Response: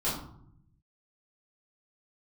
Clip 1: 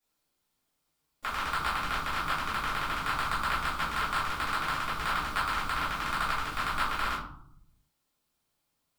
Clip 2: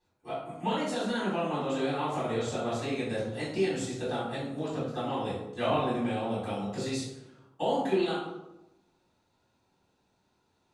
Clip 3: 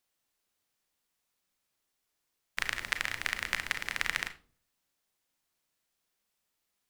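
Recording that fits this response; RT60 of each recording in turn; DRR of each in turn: 1; 0.70, 0.95, 0.45 seconds; −11.0, −10.5, 9.5 decibels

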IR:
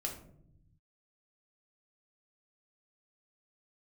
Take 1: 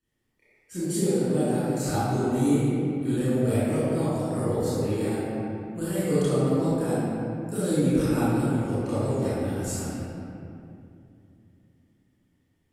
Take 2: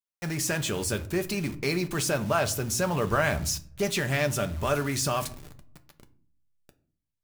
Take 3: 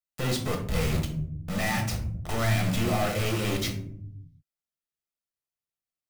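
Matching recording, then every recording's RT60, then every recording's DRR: 3; 2.6, 0.50, 0.70 seconds; −13.0, 7.0, 0.5 decibels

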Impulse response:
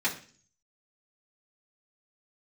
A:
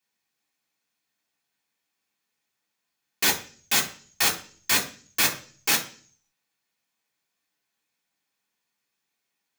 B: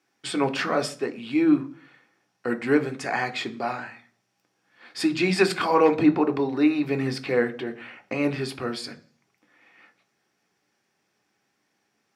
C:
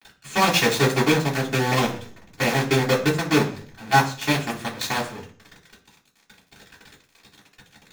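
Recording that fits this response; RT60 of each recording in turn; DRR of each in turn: C; 0.45, 0.45, 0.45 seconds; −3.5, 6.0, −7.5 decibels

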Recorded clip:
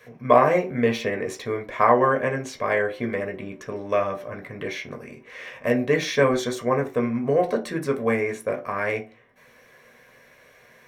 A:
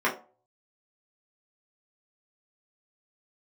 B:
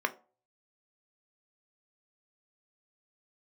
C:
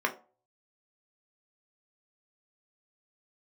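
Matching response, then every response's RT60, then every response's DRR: C; 0.40, 0.40, 0.40 seconds; −7.0, 7.5, 2.0 decibels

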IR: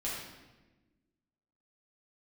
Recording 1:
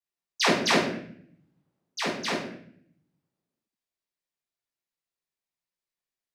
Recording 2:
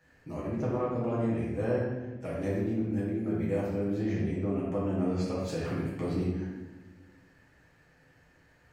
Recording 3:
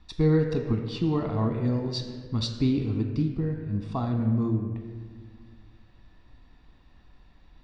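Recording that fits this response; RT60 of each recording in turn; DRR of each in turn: 2; 0.60, 1.2, 1.7 seconds; −9.5, −7.5, 3.0 decibels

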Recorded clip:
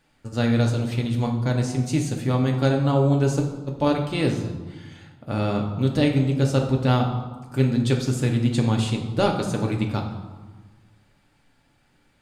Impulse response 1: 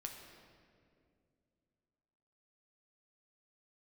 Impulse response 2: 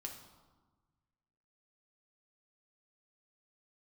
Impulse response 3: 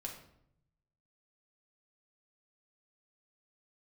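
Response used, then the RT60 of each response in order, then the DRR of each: 2; 2.4, 1.3, 0.70 seconds; 2.0, 1.0, 0.0 decibels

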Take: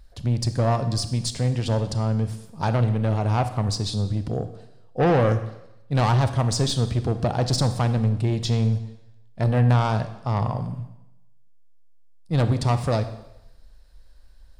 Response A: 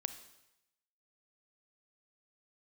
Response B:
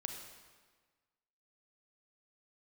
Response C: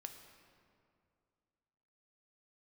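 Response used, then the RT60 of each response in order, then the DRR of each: A; 0.90, 1.5, 2.4 seconds; 10.0, 3.5, 5.0 decibels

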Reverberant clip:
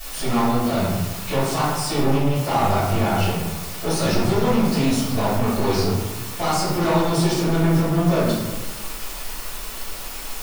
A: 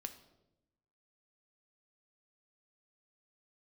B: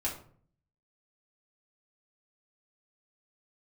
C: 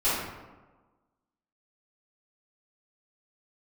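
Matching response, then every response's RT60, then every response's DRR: C; 0.90, 0.50, 1.3 seconds; 7.0, −4.5, −14.5 decibels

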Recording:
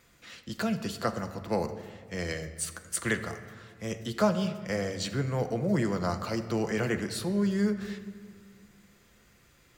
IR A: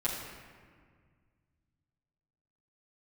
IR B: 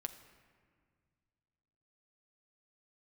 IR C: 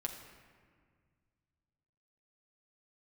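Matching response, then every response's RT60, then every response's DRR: B; 1.8, 1.9, 1.8 seconds; −8.5, 7.0, 1.5 decibels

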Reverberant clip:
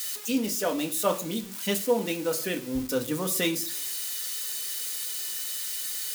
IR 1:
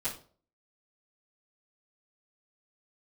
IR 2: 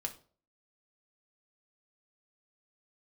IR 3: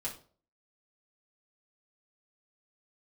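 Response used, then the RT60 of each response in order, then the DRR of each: 2; 0.45, 0.45, 0.45 seconds; −15.5, 3.0, −5.5 decibels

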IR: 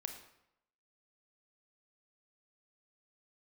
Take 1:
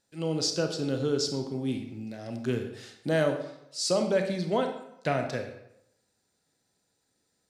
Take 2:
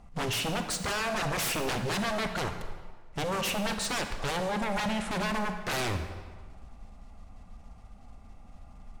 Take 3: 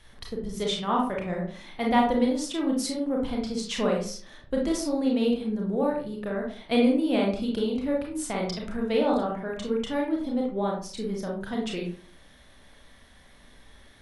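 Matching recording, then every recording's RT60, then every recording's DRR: 1; 0.80, 1.5, 0.45 seconds; 5.0, 6.5, −1.5 decibels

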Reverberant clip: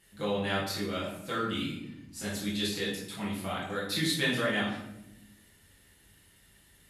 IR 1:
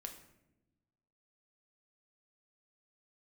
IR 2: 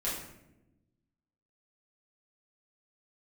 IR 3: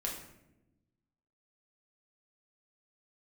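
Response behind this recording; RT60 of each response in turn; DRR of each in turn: 2; 0.95, 0.90, 0.90 seconds; 4.0, −8.5, −2.0 decibels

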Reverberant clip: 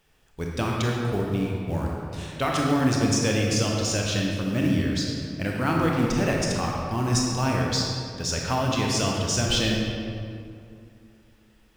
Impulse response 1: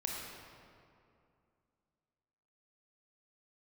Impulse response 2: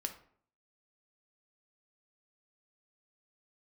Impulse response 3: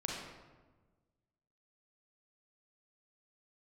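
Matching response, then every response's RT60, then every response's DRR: 1; 2.5, 0.55, 1.3 seconds; −2.0, 5.5, −2.5 decibels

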